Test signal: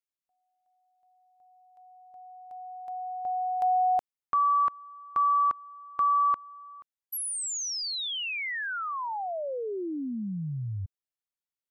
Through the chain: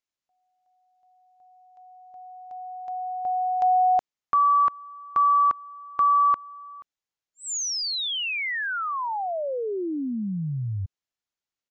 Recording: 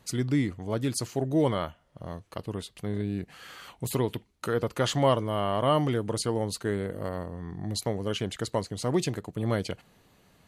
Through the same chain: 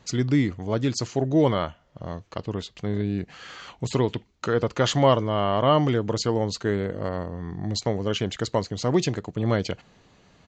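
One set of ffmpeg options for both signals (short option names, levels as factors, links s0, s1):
-af "aresample=16000,aresample=44100,volume=1.68"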